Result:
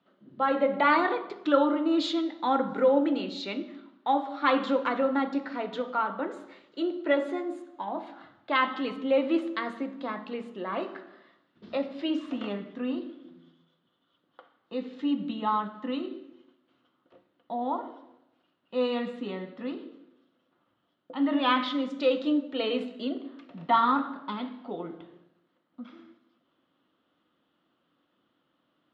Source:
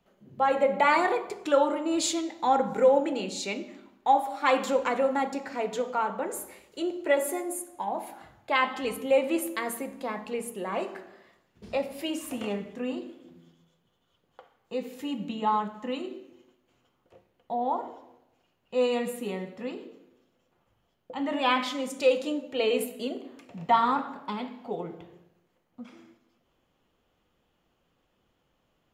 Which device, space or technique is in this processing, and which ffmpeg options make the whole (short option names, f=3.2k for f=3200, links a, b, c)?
kitchen radio: -af "highpass=190,equalizer=f=290:t=q:w=4:g=8,equalizer=f=440:t=q:w=4:g=-6,equalizer=f=800:t=q:w=4:g=-5,equalizer=f=1.3k:t=q:w=4:g=5,equalizer=f=2.4k:t=q:w=4:g=-6,equalizer=f=3.7k:t=q:w=4:g=4,lowpass=f=4.1k:w=0.5412,lowpass=f=4.1k:w=1.3066"